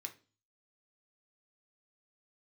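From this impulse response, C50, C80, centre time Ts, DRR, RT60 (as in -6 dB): 15.0 dB, 22.0 dB, 7 ms, 4.5 dB, 0.35 s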